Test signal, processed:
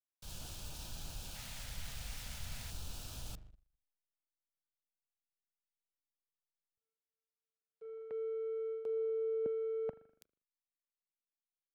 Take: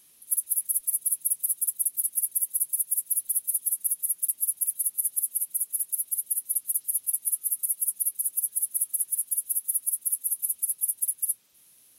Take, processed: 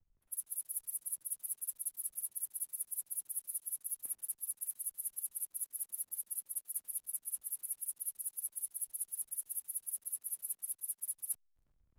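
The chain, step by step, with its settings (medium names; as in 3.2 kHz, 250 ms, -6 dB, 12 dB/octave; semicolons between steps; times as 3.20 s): spring tank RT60 3 s, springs 40 ms, chirp 65 ms, DRR 9.5 dB; in parallel at +2 dB: level held to a coarse grid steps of 17 dB; on the sum: LFO notch square 0.37 Hz 350–2000 Hz; peaking EQ 390 Hz -6 dB 0.99 oct; band-stop 1.1 kHz, Q 7.9; hysteresis with a dead band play -40.5 dBFS; reverse; compression 8:1, threshold -30 dBFS; reverse; three bands expanded up and down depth 100%; trim -6 dB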